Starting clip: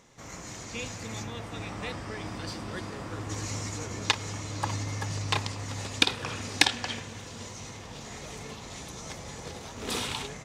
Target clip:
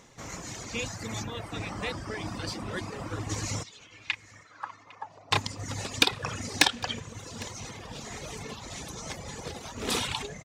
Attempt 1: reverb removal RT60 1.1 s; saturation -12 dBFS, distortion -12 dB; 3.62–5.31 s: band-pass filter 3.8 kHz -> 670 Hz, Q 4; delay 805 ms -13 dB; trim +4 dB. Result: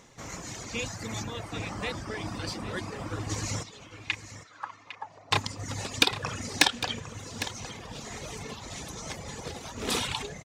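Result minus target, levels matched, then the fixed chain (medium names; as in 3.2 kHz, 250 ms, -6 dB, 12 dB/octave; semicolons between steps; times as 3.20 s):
echo-to-direct +10 dB
reverb removal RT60 1.1 s; saturation -12 dBFS, distortion -12 dB; 3.62–5.31 s: band-pass filter 3.8 kHz -> 670 Hz, Q 4; delay 805 ms -23 dB; trim +4 dB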